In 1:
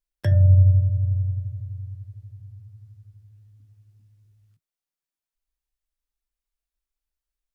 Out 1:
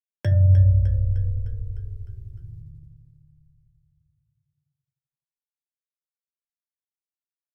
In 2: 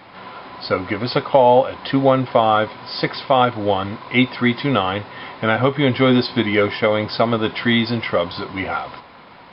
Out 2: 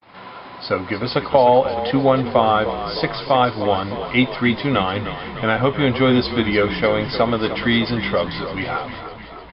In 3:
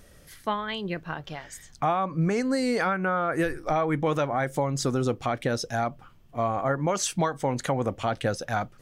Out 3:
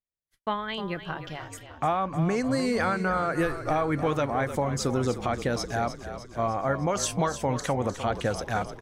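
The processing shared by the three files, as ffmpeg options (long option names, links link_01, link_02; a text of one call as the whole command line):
ffmpeg -i in.wav -filter_complex "[0:a]agate=range=-49dB:threshold=-43dB:ratio=16:detection=peak,asplit=2[link_01][link_02];[link_02]asplit=7[link_03][link_04][link_05][link_06][link_07][link_08][link_09];[link_03]adelay=304,afreqshift=-35,volume=-11dB[link_10];[link_04]adelay=608,afreqshift=-70,volume=-15.2dB[link_11];[link_05]adelay=912,afreqshift=-105,volume=-19.3dB[link_12];[link_06]adelay=1216,afreqshift=-140,volume=-23.5dB[link_13];[link_07]adelay=1520,afreqshift=-175,volume=-27.6dB[link_14];[link_08]adelay=1824,afreqshift=-210,volume=-31.8dB[link_15];[link_09]adelay=2128,afreqshift=-245,volume=-35.9dB[link_16];[link_10][link_11][link_12][link_13][link_14][link_15][link_16]amix=inputs=7:normalize=0[link_17];[link_01][link_17]amix=inputs=2:normalize=0,volume=-1dB" out.wav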